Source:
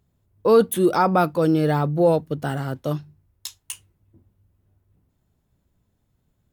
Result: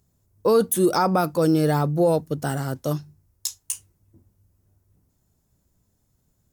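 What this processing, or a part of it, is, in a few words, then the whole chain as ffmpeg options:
over-bright horn tweeter: -af "highshelf=f=4.4k:t=q:w=1.5:g=8,alimiter=limit=-10dB:level=0:latency=1:release=60"

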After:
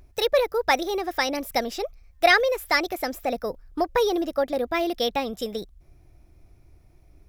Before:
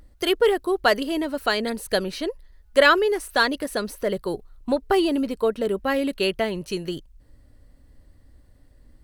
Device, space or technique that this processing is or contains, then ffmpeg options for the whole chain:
nightcore: -af "asetrate=54684,aresample=44100,volume=-1.5dB"

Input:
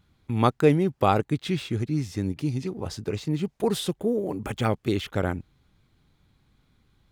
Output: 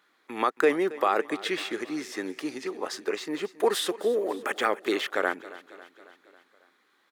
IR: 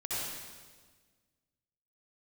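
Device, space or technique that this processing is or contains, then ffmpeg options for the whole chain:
laptop speaker: -af "highpass=f=340:w=0.5412,highpass=f=340:w=1.3066,equalizer=f=1.2k:t=o:w=0.49:g=6,equalizer=f=1.8k:t=o:w=0.4:g=10,alimiter=limit=-13.5dB:level=0:latency=1:release=102,aecho=1:1:274|548|822|1096|1370:0.126|0.0743|0.0438|0.0259|0.0153,volume=2dB"

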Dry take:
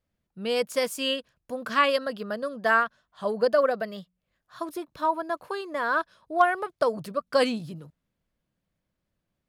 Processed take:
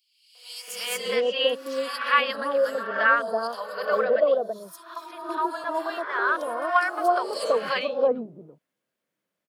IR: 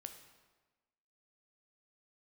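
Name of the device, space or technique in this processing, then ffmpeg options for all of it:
ghost voice: -filter_complex "[0:a]areverse[a];[1:a]atrim=start_sample=2205[b];[a][b]afir=irnorm=-1:irlink=0,areverse,highpass=370,acrossover=split=840|4200[c][d][e];[d]adelay=350[f];[c]adelay=680[g];[g][f][e]amix=inputs=3:normalize=0,volume=9dB"

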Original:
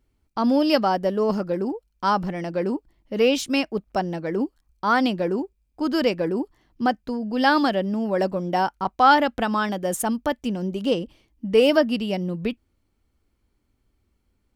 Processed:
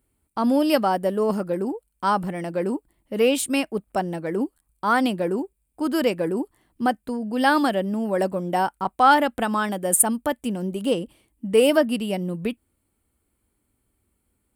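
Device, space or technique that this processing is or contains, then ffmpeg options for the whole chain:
budget condenser microphone: -af "highpass=f=76:p=1,highshelf=f=7.2k:t=q:w=3:g=8"

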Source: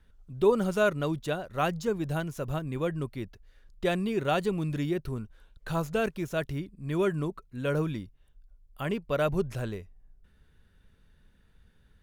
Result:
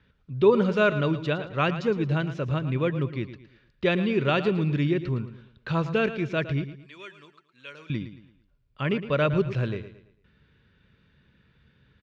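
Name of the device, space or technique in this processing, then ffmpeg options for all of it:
guitar cabinet: -filter_complex "[0:a]asettb=1/sr,asplit=3[a][b][c];[a]atrim=end=6.644[d];[b]atrim=start=6.64:end=7.9,asetpts=PTS-STARTPTS,afade=t=in:d=0.004:c=qsin,afade=t=out:st=1.256:d=0.004:c=qsin,aderivative[e];[c]atrim=start=7.896[f];[d][e]acrossfade=d=0.004:c1=hsin:c2=qsin[g];[g][f]acrossfade=d=0.004:c1=qsin:c2=hsin,highpass=91,equalizer=f=130:t=q:w=4:g=5,equalizer=f=740:t=q:w=4:g=-8,equalizer=f=2.4k:t=q:w=4:g=5,lowpass=f=4.6k:w=0.5412,lowpass=f=4.6k:w=1.3066,aecho=1:1:112|224|336|448:0.237|0.0877|0.0325|0.012,volume=4.5dB"

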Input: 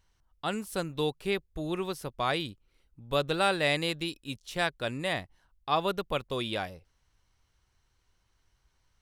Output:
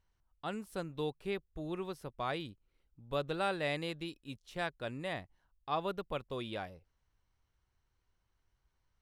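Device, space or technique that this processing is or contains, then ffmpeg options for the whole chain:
behind a face mask: -af "highshelf=f=2.9k:g=-8,volume=-6.5dB"

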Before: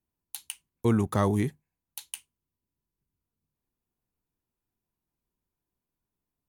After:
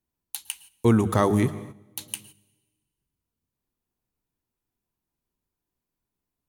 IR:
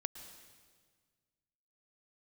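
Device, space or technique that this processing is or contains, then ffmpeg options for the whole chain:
keyed gated reverb: -filter_complex "[0:a]asplit=3[a][b][c];[1:a]atrim=start_sample=2205[d];[b][d]afir=irnorm=-1:irlink=0[e];[c]apad=whole_len=286067[f];[e][f]sidechaingate=range=-12dB:threshold=-58dB:ratio=16:detection=peak,volume=0dB[g];[a][g]amix=inputs=2:normalize=0,bandreject=f=50:t=h:w=6,bandreject=f=100:t=h:w=6,bandreject=f=150:t=h:w=6,bandreject=f=200:t=h:w=6"

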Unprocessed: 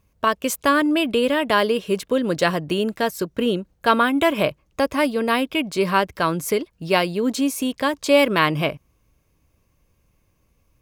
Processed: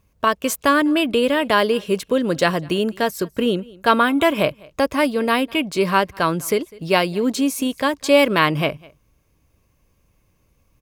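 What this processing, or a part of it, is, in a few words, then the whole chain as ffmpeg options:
ducked delay: -filter_complex "[0:a]asplit=3[a][b][c];[b]adelay=202,volume=-8dB[d];[c]apad=whole_len=485842[e];[d][e]sidechaincompress=threshold=-34dB:ratio=8:attack=6.8:release=755[f];[a][f]amix=inputs=2:normalize=0,volume=1.5dB"

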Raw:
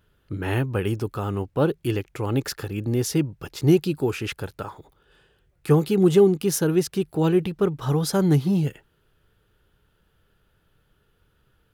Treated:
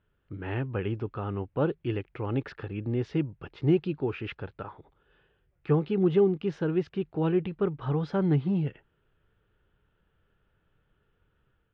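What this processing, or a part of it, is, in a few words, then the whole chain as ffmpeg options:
action camera in a waterproof case: -af "lowpass=f=3k:w=0.5412,lowpass=f=3k:w=1.3066,dynaudnorm=f=410:g=3:m=3.5dB,volume=-9dB" -ar 22050 -c:a aac -b:a 96k

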